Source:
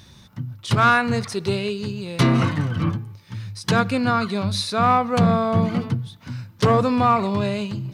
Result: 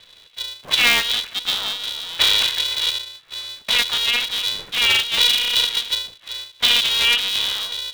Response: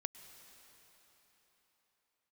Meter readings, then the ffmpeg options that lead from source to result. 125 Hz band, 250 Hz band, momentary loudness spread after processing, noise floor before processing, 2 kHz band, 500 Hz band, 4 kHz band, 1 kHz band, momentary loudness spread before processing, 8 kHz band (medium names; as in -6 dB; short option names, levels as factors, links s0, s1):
under -25 dB, -22.0 dB, 15 LU, -49 dBFS, +5.0 dB, -14.0 dB, +17.0 dB, -11.5 dB, 15 LU, +10.0 dB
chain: -af "lowpass=f=3200:t=q:w=0.5098,lowpass=f=3200:t=q:w=0.6013,lowpass=f=3200:t=q:w=0.9,lowpass=f=3200:t=q:w=2.563,afreqshift=-3800,aeval=exprs='val(0)*sgn(sin(2*PI*240*n/s))':c=same"